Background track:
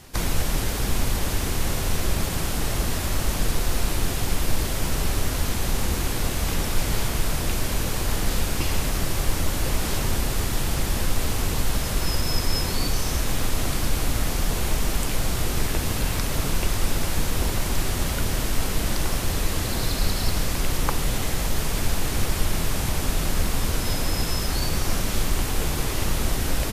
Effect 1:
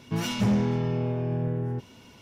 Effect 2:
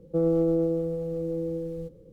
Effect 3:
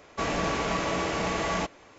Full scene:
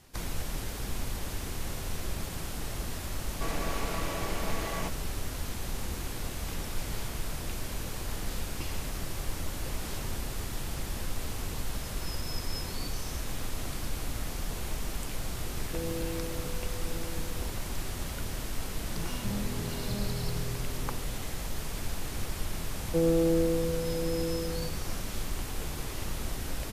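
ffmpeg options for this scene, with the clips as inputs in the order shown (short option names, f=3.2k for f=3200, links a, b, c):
-filter_complex "[2:a]asplit=2[a][b];[0:a]volume=-11dB[c];[a]crystalizer=i=2:c=0[d];[1:a]aecho=1:1:630:0.708[e];[3:a]atrim=end=1.98,asetpts=PTS-STARTPTS,volume=-8dB,afade=t=in:d=0.004:c=hsin,afade=t=out:st=1.976:d=0.004:c=hsin,adelay=3230[f];[d]atrim=end=2.12,asetpts=PTS-STARTPTS,volume=-14dB,afade=t=in:d=0.004:c=hsin,afade=t=out:st=2.116:d=0.004:c=hsin,adelay=15590[g];[e]atrim=end=2.21,asetpts=PTS-STARTPTS,volume=-12.5dB,afade=t=in:d=0.004:c=hsin,afade=t=out:st=2.206:d=0.004:c=hsin,adelay=18840[h];[b]atrim=end=2.12,asetpts=PTS-STARTPTS,volume=-2dB,afade=t=in:d=0.004:c=hsin,afade=t=out:st=2.116:d=0.004:c=hsin,adelay=22800[i];[c][f][g][h][i]amix=inputs=5:normalize=0"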